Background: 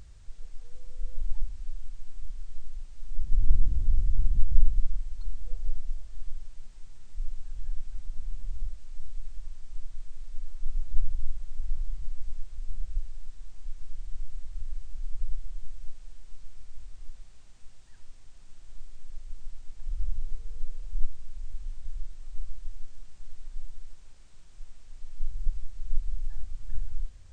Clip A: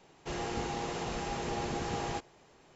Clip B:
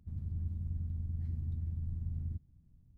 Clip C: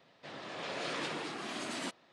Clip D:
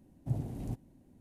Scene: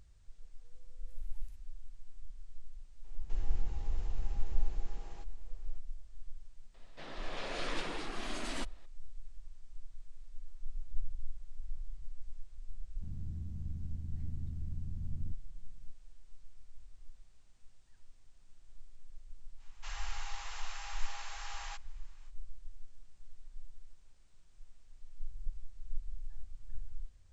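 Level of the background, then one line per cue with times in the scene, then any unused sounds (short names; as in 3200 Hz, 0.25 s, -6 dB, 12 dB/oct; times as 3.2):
background -11 dB
0.81 add D -11.5 dB + inverse Chebyshev high-pass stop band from 260 Hz, stop band 80 dB
3.04 add A -11 dB + compressor 2.5:1, threshold -46 dBFS
6.74 add C -2 dB
12.95 add B -1 dB + bell 91 Hz -8.5 dB 0.27 oct
19.57 add A -4 dB, fades 0.05 s + HPF 1000 Hz 24 dB/oct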